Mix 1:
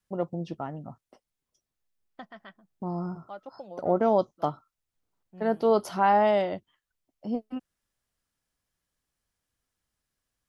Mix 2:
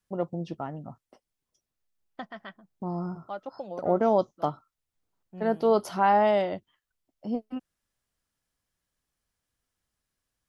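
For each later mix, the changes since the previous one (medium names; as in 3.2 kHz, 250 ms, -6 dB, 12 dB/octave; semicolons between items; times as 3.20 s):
second voice +5.0 dB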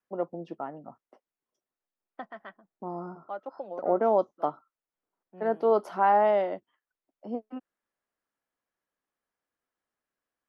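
master: add three-band isolator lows -20 dB, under 240 Hz, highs -14 dB, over 2.2 kHz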